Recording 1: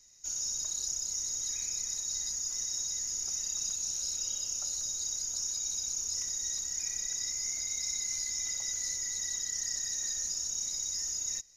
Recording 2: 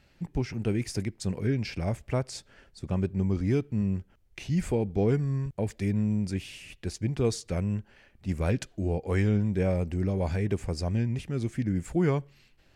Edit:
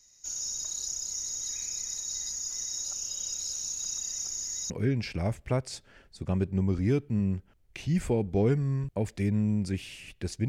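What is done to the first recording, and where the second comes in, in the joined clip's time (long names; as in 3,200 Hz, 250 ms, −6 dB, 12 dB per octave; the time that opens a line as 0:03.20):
recording 1
0:02.85–0:04.70: reverse
0:04.70: continue with recording 2 from 0:01.32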